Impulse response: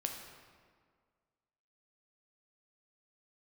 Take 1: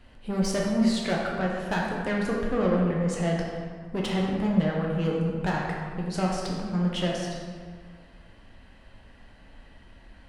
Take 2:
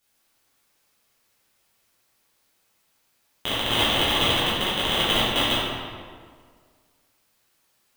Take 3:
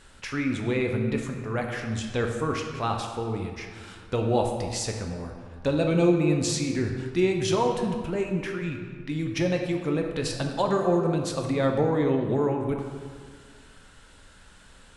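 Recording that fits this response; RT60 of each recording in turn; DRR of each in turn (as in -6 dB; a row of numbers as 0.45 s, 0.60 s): 3; 1.8 s, 1.8 s, 1.8 s; -2.5 dB, -10.5 dB, 2.5 dB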